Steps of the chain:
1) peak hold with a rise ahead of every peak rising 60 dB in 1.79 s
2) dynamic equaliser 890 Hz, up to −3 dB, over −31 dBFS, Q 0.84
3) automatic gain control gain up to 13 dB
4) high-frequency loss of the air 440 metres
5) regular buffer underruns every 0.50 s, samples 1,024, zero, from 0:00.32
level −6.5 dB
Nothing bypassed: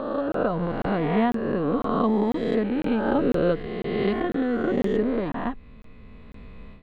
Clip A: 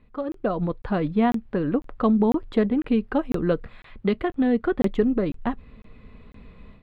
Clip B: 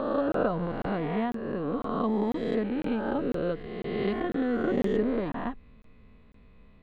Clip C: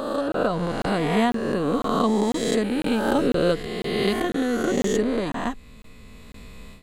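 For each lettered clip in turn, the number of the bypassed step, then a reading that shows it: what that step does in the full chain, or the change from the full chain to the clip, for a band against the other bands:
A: 1, 250 Hz band +3.5 dB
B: 3, change in crest factor +2.0 dB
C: 4, 4 kHz band +9.0 dB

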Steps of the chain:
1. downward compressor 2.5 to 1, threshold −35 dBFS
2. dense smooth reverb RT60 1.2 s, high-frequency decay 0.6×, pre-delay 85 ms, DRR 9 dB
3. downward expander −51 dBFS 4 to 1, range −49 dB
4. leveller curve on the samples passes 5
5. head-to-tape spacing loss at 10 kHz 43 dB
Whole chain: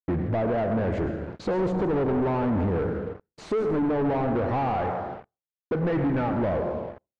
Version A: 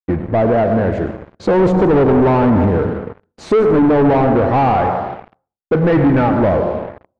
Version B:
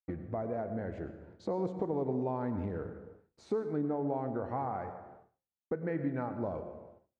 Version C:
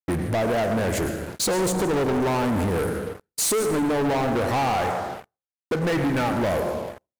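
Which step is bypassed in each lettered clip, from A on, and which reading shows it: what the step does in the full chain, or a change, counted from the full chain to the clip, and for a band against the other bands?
1, average gain reduction 9.0 dB
4, change in crest factor +9.0 dB
5, 4 kHz band +14.0 dB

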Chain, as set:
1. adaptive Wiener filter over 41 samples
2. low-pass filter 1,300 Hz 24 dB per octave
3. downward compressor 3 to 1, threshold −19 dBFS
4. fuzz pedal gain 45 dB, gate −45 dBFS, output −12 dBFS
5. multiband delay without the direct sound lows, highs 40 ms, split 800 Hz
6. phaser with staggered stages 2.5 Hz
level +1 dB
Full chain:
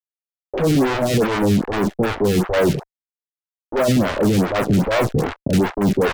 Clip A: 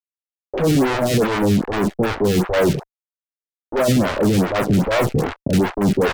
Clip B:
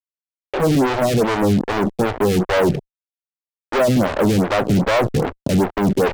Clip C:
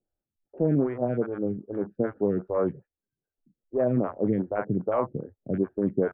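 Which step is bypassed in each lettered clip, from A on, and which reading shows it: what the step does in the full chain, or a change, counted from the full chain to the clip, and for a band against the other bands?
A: 3, average gain reduction 2.0 dB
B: 5, change in crest factor −2.0 dB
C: 4, distortion level −1 dB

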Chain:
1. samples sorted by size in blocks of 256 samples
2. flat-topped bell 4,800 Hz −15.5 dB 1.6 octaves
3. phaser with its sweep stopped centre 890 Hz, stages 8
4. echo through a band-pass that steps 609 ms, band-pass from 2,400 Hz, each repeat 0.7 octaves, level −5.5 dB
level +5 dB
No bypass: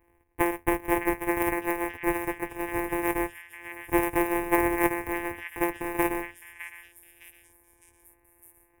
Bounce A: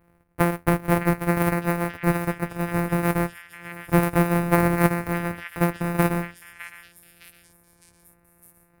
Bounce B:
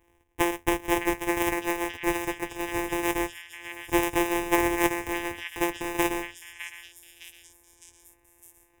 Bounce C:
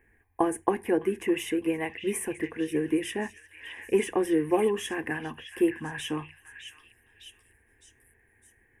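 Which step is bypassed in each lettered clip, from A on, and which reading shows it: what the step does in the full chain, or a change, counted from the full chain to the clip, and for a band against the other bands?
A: 3, 125 Hz band +16.0 dB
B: 2, 4 kHz band +12.0 dB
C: 1, 4 kHz band +9.0 dB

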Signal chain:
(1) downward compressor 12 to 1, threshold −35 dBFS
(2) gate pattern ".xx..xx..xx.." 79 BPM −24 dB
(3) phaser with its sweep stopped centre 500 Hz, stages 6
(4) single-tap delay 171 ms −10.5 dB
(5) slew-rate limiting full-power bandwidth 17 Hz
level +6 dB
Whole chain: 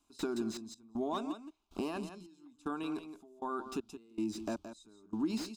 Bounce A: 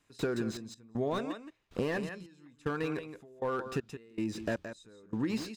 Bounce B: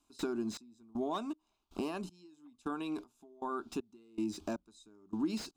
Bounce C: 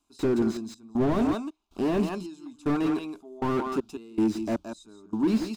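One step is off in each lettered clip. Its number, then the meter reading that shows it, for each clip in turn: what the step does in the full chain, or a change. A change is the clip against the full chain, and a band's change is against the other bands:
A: 3, 125 Hz band +9.5 dB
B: 4, change in momentary loudness spread +1 LU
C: 1, average gain reduction 11.0 dB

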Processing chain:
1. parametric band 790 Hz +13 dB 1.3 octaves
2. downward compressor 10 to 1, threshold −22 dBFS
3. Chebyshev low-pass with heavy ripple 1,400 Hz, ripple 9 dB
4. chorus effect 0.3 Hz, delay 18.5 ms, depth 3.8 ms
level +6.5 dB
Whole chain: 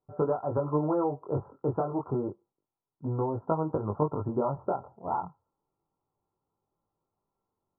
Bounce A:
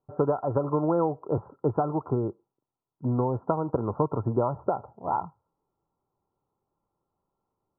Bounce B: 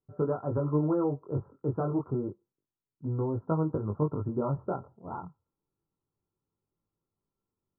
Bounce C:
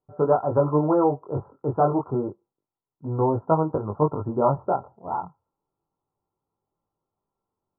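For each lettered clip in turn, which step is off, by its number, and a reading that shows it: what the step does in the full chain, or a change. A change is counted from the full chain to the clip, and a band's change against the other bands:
4, change in integrated loudness +3.0 LU
1, 1 kHz band −7.5 dB
2, average gain reduction 5.0 dB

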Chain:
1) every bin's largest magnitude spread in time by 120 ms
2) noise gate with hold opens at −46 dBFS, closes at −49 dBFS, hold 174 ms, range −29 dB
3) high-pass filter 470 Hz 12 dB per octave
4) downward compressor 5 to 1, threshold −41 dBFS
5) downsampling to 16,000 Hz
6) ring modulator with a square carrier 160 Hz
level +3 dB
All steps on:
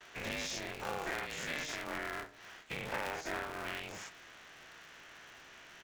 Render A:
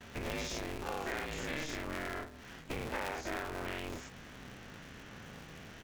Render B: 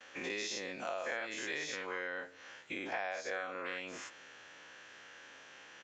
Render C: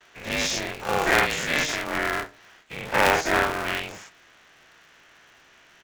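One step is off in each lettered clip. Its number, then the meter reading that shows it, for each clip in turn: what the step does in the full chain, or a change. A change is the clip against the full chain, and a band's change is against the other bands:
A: 3, 125 Hz band +6.5 dB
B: 6, 125 Hz band −9.0 dB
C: 4, average gain reduction 8.5 dB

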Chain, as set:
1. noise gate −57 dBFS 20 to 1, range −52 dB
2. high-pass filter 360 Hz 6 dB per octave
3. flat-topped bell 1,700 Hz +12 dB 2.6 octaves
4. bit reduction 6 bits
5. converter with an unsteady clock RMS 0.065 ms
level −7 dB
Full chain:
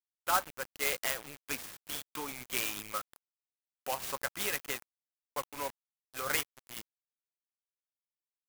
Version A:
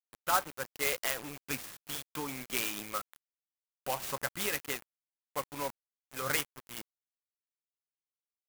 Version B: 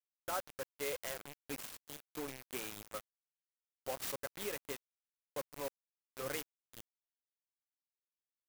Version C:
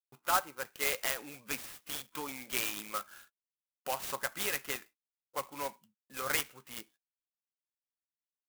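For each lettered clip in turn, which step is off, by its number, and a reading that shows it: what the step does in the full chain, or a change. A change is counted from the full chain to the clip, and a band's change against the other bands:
2, 125 Hz band +5.0 dB
3, 500 Hz band +7.5 dB
4, distortion level −12 dB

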